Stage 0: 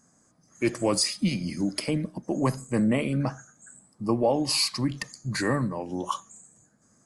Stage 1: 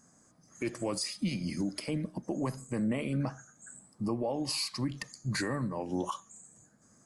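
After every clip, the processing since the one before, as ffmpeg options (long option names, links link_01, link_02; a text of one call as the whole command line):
ffmpeg -i in.wav -af "alimiter=limit=-23.5dB:level=0:latency=1:release=473" out.wav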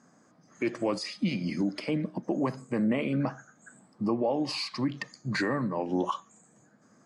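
ffmpeg -i in.wav -af "highpass=170,lowpass=3700,volume=5.5dB" out.wav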